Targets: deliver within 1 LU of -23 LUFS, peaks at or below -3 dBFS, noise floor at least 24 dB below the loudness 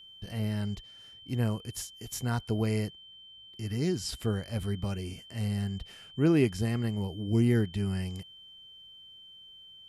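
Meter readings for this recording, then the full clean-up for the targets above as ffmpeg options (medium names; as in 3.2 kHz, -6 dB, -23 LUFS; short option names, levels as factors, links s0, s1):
steady tone 3.1 kHz; tone level -49 dBFS; loudness -31.5 LUFS; peak level -12.5 dBFS; loudness target -23.0 LUFS
-> -af "bandreject=f=3100:w=30"
-af "volume=2.66"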